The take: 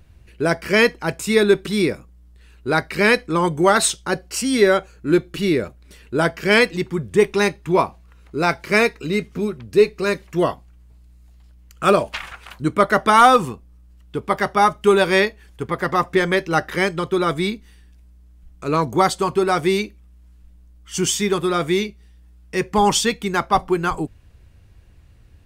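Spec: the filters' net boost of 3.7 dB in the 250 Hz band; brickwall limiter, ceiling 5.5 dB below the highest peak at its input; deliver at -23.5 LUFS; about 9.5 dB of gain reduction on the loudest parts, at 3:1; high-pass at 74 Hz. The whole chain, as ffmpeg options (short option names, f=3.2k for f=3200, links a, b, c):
-af "highpass=74,equalizer=f=250:t=o:g=5.5,acompressor=threshold=-20dB:ratio=3,volume=2dB,alimiter=limit=-12dB:level=0:latency=1"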